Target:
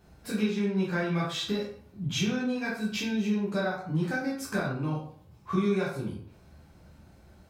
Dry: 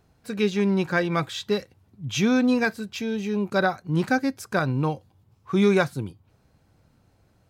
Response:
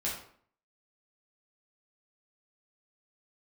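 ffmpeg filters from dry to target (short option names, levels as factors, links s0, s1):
-filter_complex "[0:a]acompressor=threshold=0.02:ratio=6[s0];[1:a]atrim=start_sample=2205[s1];[s0][s1]afir=irnorm=-1:irlink=0,volume=1.26"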